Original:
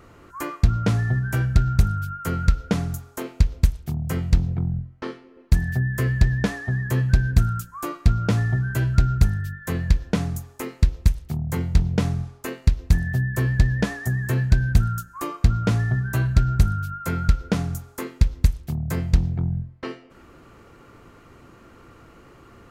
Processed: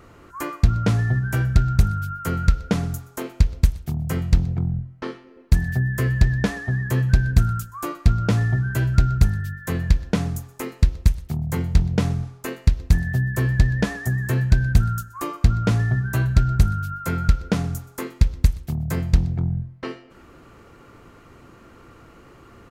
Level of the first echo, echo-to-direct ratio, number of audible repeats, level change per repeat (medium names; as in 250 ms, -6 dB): -23.0 dB, -22.5 dB, 2, -9.0 dB